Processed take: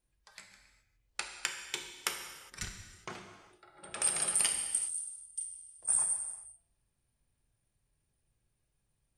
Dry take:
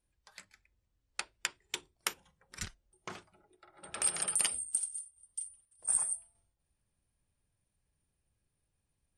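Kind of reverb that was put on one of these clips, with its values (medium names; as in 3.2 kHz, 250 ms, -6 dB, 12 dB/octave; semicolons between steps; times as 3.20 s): gated-style reverb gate 440 ms falling, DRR 3.5 dB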